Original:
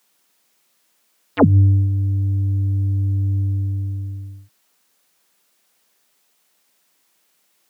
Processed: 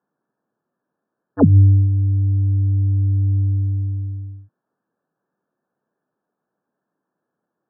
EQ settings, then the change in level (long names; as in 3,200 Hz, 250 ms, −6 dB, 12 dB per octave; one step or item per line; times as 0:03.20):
linear-phase brick-wall low-pass 1,800 Hz
tilt shelving filter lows +7.5 dB, about 670 Hz
−5.0 dB